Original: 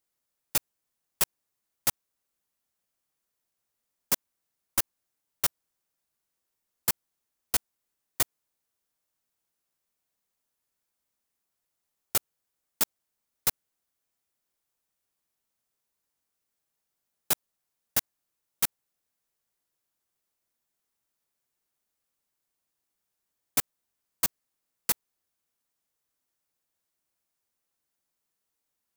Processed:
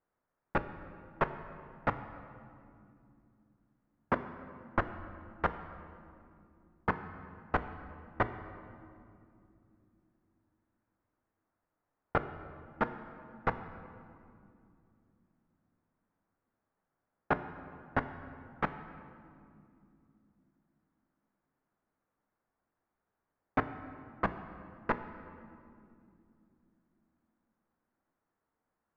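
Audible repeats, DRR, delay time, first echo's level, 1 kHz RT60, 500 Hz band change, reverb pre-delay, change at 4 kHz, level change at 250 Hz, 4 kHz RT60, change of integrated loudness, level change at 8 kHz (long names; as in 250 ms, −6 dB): no echo audible, 9.5 dB, no echo audible, no echo audible, 2.3 s, +7.5 dB, 4 ms, −20.0 dB, +8.0 dB, 1.6 s, −8.0 dB, below −40 dB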